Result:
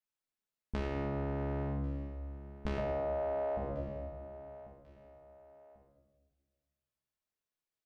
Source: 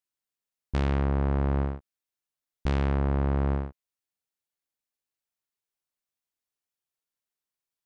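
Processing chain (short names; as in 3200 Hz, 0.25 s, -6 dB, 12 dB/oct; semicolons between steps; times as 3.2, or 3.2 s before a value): 2.77–3.57 resonant high-pass 610 Hz, resonance Q 4.7; feedback echo 1.092 s, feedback 35%, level -22.5 dB; reverb RT60 1.3 s, pre-delay 5 ms, DRR -2.5 dB; compressor 10:1, threshold -26 dBFS, peak gain reduction 8.5 dB; high shelf 4100 Hz -5.5 dB; gain -5.5 dB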